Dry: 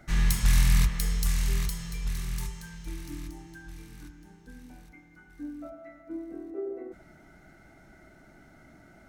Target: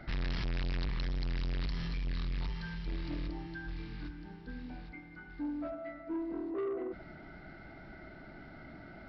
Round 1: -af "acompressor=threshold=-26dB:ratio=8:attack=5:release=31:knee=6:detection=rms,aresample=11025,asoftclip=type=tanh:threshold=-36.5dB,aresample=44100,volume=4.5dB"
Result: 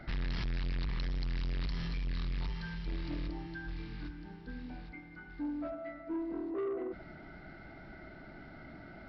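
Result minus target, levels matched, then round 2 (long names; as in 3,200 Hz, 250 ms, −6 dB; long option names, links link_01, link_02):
downward compressor: peak gain reduction +10.5 dB
-af "aresample=11025,asoftclip=type=tanh:threshold=-36.5dB,aresample=44100,volume=4.5dB"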